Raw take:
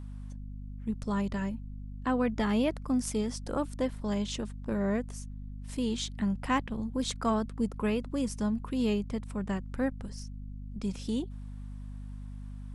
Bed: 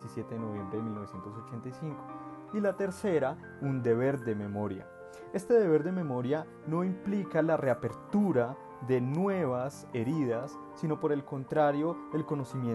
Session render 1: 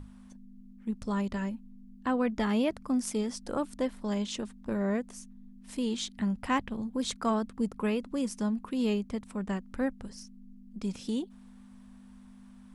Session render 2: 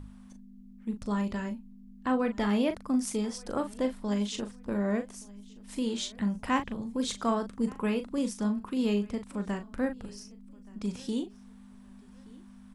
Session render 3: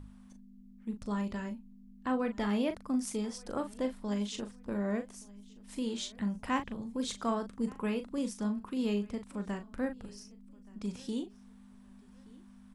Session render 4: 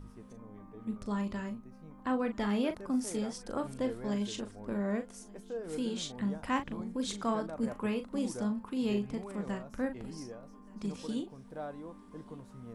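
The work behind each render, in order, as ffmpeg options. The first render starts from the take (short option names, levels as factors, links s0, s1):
-af "bandreject=f=50:t=h:w=6,bandreject=f=100:t=h:w=6,bandreject=f=150:t=h:w=6"
-filter_complex "[0:a]asplit=2[s0][s1];[s1]adelay=39,volume=0.376[s2];[s0][s2]amix=inputs=2:normalize=0,aecho=1:1:1174|2348:0.0668|0.0201"
-af "volume=0.631"
-filter_complex "[1:a]volume=0.178[s0];[0:a][s0]amix=inputs=2:normalize=0"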